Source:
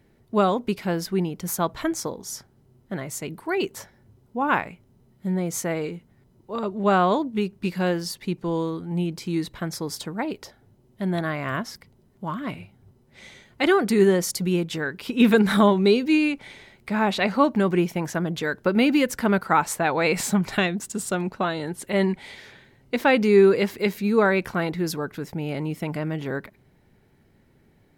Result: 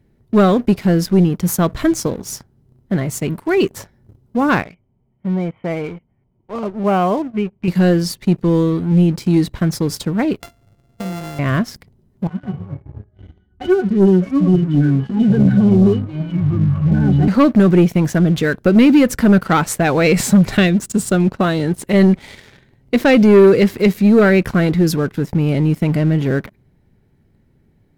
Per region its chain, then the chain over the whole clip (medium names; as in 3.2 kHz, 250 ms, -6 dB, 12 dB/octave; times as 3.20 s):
4.62–7.68 s: rippled Chebyshev low-pass 3.2 kHz, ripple 9 dB + band-stop 850 Hz, Q 20
10.40–11.39 s: sorted samples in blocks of 64 samples + compression 8:1, threshold -34 dBFS
12.27–17.28 s: pitch-class resonator F#, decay 0.11 s + ever faster or slower copies 160 ms, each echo -5 st, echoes 3, each echo -6 dB
whole clip: bass shelf 310 Hz +11 dB; waveshaping leveller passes 2; dynamic bell 900 Hz, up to -7 dB, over -35 dBFS, Q 4.2; trim -1 dB